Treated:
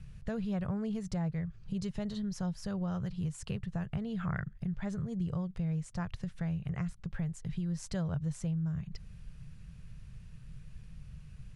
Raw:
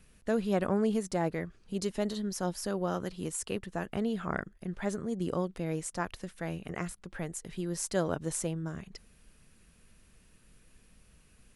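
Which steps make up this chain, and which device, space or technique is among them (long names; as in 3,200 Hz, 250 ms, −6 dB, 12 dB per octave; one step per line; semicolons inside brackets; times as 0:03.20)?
jukebox (low-pass filter 6,300 Hz 12 dB per octave; low shelf with overshoot 200 Hz +12.5 dB, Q 3; downward compressor 3 to 1, threshold −35 dBFS, peak gain reduction 12 dB)
0:04.18–0:04.58: dynamic equaliser 1,800 Hz, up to +7 dB, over −59 dBFS, Q 1.2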